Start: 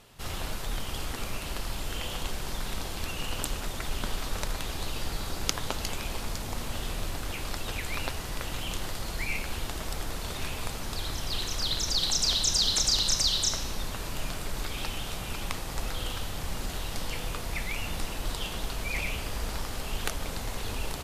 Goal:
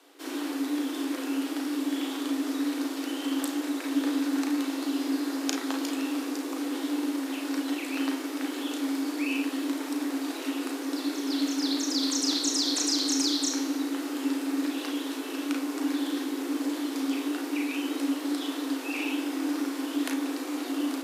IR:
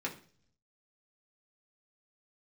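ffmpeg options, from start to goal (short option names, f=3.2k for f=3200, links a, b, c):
-filter_complex "[0:a]afreqshift=260,asplit=2[a][b];[1:a]atrim=start_sample=2205,adelay=35[c];[b][c]afir=irnorm=-1:irlink=0,volume=-4dB[d];[a][d]amix=inputs=2:normalize=0,volume=-3.5dB"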